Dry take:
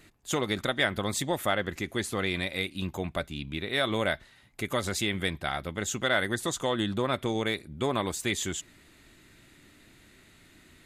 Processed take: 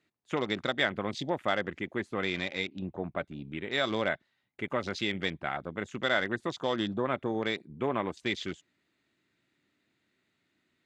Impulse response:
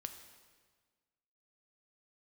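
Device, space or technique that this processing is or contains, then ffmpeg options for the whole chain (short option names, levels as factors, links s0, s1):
over-cleaned archive recording: -filter_complex "[0:a]asettb=1/sr,asplit=3[s0][s1][s2];[s0]atrim=end=2.674[s3];[s1]atrim=start=2.67:end=3.18,asetpts=PTS-STARTPTS,afade=t=in:d=0.004:c=qsin,afade=t=out:st=0.506:d=0.004:c=qsin,lowpass=2900[s4];[s2]atrim=start=3.176[s5];[s3][s4]acrossfade=d=0.004:c1=hsin:c2=qsin[s6];[s6][s5]acrossfade=d=0.004:c1=qsin:c2=hsin,highpass=140,lowpass=5400,afwtdn=0.0112,volume=0.841"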